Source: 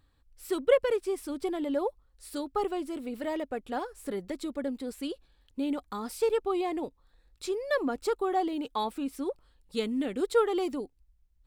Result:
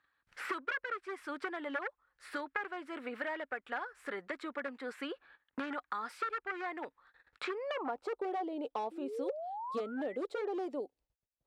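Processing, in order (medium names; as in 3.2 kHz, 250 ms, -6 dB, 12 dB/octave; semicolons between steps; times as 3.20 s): gate -59 dBFS, range -29 dB; wavefolder -25.5 dBFS; painted sound rise, 8.91–10.17 s, 310–2100 Hz -41 dBFS; band-pass sweep 1.6 kHz -> 590 Hz, 7.49–8.21 s; three bands compressed up and down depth 100%; trim +3.5 dB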